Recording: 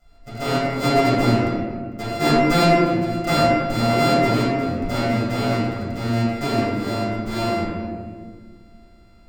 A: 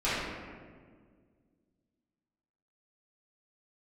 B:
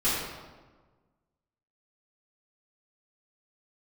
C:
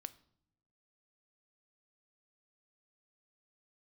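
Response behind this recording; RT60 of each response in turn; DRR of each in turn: A; 1.8, 1.4, 0.80 s; -13.5, -13.5, 13.5 dB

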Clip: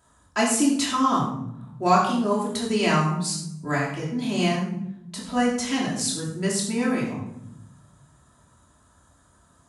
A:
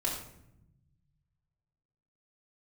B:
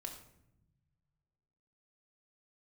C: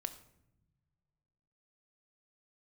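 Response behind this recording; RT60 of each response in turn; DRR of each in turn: A; 0.80 s, 0.85 s, not exponential; -5.0, 1.5, 8.5 dB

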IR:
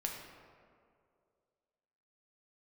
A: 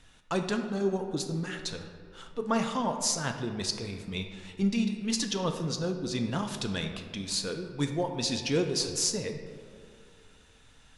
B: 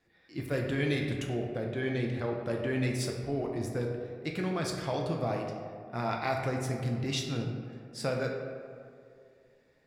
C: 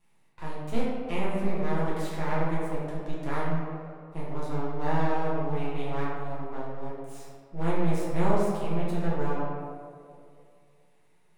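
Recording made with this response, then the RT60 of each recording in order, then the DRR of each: B; 2.3, 2.3, 2.3 s; 4.5, 0.0, -8.0 dB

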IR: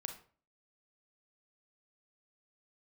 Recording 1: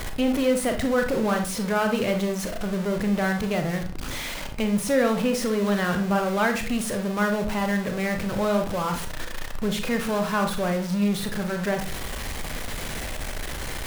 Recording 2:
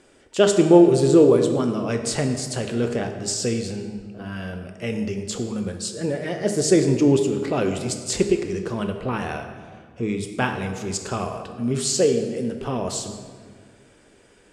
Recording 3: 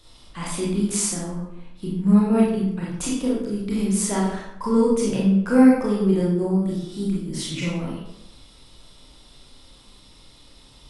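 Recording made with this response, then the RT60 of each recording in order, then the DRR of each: 1; 0.45, 1.8, 0.85 s; 5.0, 5.5, -5.5 dB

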